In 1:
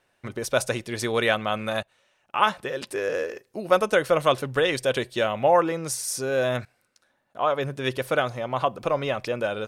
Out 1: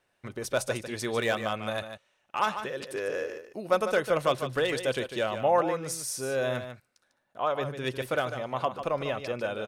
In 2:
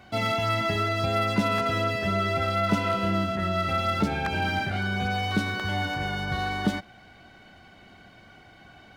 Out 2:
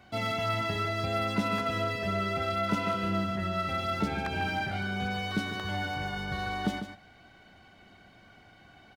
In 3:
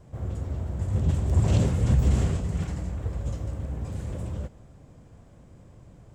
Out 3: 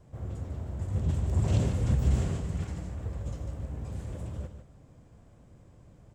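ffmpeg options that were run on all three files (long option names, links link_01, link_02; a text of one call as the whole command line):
ffmpeg -i in.wav -filter_complex "[0:a]acrossover=split=1100[link_01][link_02];[link_02]asoftclip=type=hard:threshold=-20.5dB[link_03];[link_01][link_03]amix=inputs=2:normalize=0,aecho=1:1:148:0.335,volume=-5dB" out.wav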